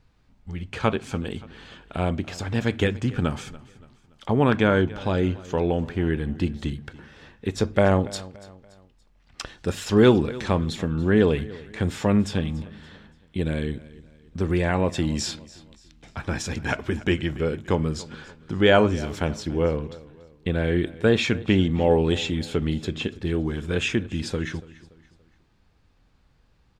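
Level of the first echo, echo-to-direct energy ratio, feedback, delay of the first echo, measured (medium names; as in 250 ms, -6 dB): -19.5 dB, -18.5 dB, 41%, 286 ms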